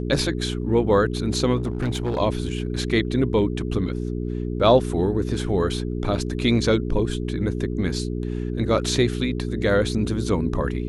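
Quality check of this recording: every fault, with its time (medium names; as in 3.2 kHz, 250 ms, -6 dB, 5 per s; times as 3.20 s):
hum 60 Hz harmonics 7 -27 dBFS
1.56–2.19 s: clipped -20 dBFS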